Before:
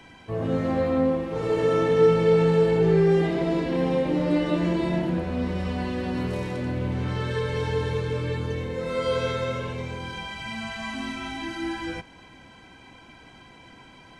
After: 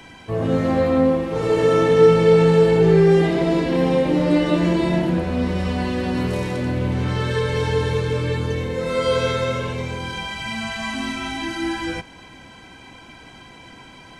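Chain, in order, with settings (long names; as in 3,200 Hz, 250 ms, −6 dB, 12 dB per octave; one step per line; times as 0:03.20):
high-shelf EQ 5,100 Hz +5 dB
level +5.5 dB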